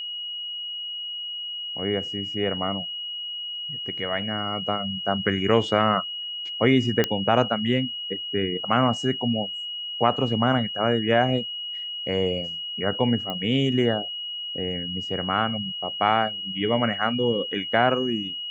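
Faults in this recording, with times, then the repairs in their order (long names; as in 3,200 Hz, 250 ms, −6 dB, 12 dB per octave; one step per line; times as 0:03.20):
whistle 2,900 Hz −30 dBFS
0:07.04: click −7 dBFS
0:13.30: click −17 dBFS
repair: click removal
notch filter 2,900 Hz, Q 30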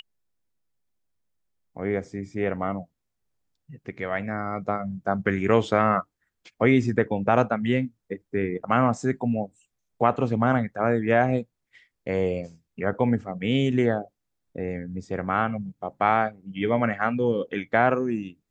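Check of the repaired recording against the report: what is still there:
none of them is left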